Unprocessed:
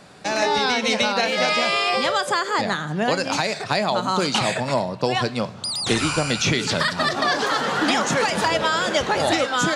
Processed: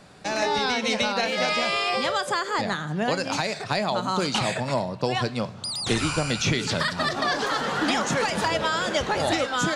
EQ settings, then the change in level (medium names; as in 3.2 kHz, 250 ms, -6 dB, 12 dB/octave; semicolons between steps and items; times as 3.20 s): bass shelf 88 Hz +9 dB; -4.0 dB